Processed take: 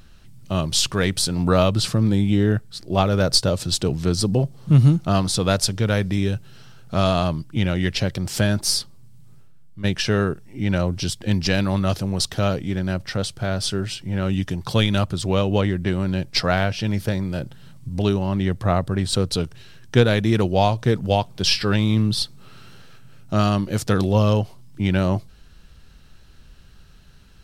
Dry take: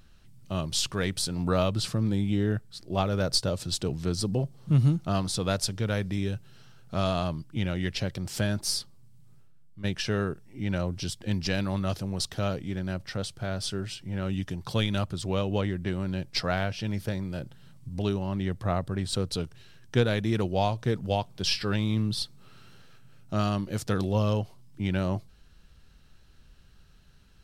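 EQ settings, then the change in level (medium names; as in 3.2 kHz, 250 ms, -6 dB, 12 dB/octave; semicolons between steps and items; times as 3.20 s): flat; +8.0 dB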